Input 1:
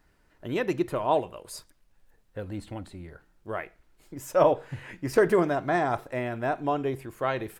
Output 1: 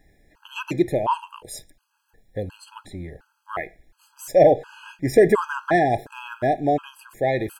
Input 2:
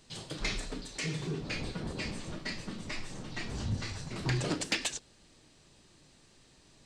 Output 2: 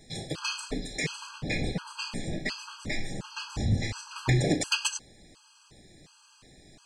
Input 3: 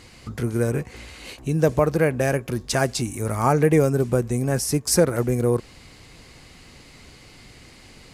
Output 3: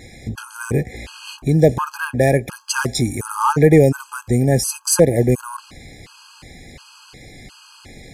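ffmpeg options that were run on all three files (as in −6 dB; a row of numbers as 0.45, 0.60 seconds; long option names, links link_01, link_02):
-af "acontrast=76,afftfilt=real='re*gt(sin(2*PI*1.4*pts/sr)*(1-2*mod(floor(b*sr/1024/830),2)),0)':imag='im*gt(sin(2*PI*1.4*pts/sr)*(1-2*mod(floor(b*sr/1024/830),2)),0)':win_size=1024:overlap=0.75,volume=1dB"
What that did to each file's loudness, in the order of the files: +6.0, +5.0, +4.5 LU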